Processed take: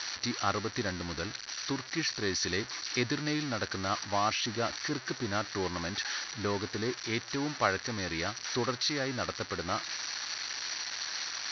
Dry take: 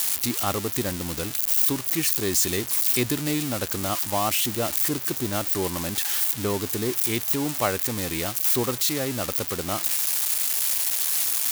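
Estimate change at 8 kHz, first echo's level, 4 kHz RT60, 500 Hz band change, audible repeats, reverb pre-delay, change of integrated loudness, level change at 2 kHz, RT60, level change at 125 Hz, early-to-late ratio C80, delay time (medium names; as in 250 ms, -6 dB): -12.5 dB, no echo, no reverb, -6.0 dB, no echo, no reverb, -10.0 dB, -1.0 dB, no reverb, -7.0 dB, no reverb, no echo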